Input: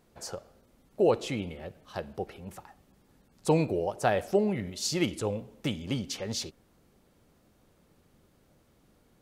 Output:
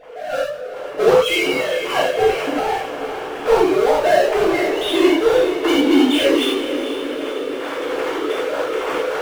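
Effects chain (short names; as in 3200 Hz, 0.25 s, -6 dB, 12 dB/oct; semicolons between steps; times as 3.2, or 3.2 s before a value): sine-wave speech; recorder AGC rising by 11 dB/s; 1.02–2.03 tilt +3.5 dB/oct; 3.7–4.56 HPF 470 Hz 6 dB/oct; power-law curve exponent 0.5; diffused feedback echo 0.458 s, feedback 64%, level -9.5 dB; non-linear reverb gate 0.13 s flat, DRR -7 dB; mismatched tape noise reduction decoder only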